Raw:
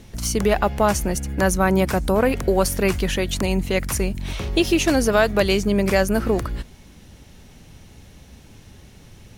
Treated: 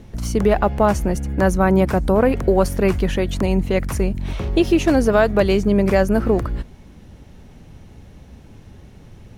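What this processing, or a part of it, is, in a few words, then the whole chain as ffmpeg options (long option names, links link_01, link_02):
through cloth: -af "highshelf=frequency=2100:gain=-12,volume=3.5dB"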